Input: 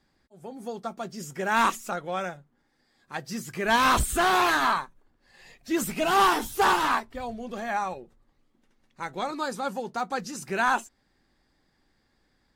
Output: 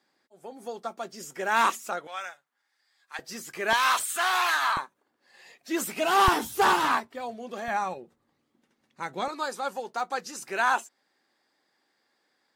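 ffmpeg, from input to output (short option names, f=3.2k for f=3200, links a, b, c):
-af "asetnsamples=n=441:p=0,asendcmd='2.07 highpass f 1200;3.19 highpass f 380;3.73 highpass f 980;4.77 highpass f 330;6.28 highpass f 98;7.07 highpass f 280;7.68 highpass f 140;9.28 highpass f 420',highpass=340"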